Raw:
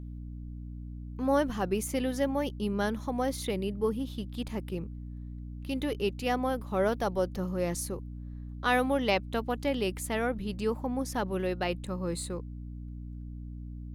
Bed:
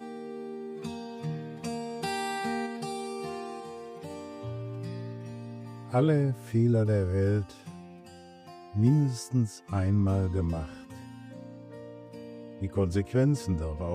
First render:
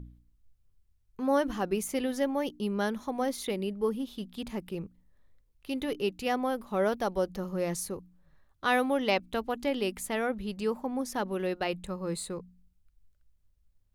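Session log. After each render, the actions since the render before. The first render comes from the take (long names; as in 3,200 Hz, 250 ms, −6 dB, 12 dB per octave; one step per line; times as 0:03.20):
hum removal 60 Hz, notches 5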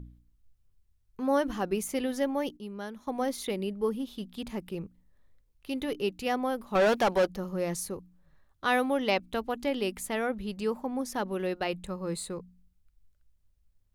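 0:02.57–0:03.07: clip gain −9 dB
0:06.75–0:07.27: mid-hump overdrive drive 21 dB, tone 5,700 Hz, clips at −16 dBFS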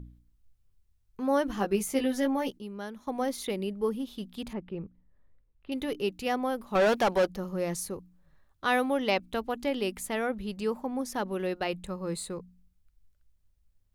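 0:01.56–0:02.62: double-tracking delay 15 ms −3 dB
0:04.53–0:05.72: high-frequency loss of the air 410 metres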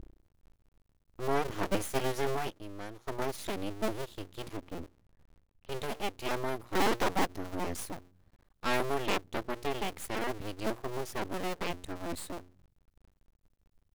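sub-harmonics by changed cycles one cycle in 2, inverted
half-wave rectification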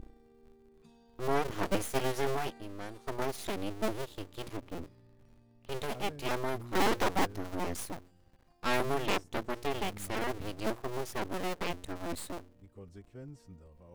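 mix in bed −23 dB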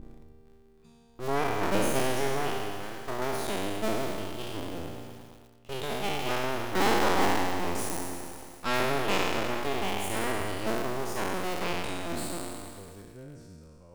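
peak hold with a decay on every bin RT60 2.00 s
feedback echo at a low word length 111 ms, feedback 80%, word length 7 bits, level −14 dB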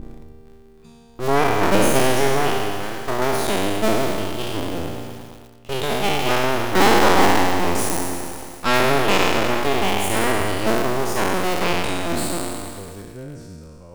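level +10.5 dB
brickwall limiter −3 dBFS, peak gain reduction 2 dB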